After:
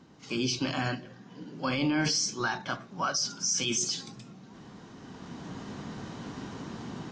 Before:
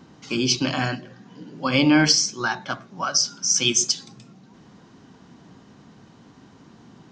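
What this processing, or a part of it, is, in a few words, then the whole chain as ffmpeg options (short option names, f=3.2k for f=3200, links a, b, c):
low-bitrate web radio: -af "dynaudnorm=f=710:g=3:m=16dB,alimiter=limit=-13dB:level=0:latency=1:release=20,volume=-7dB" -ar 22050 -c:a aac -b:a 32k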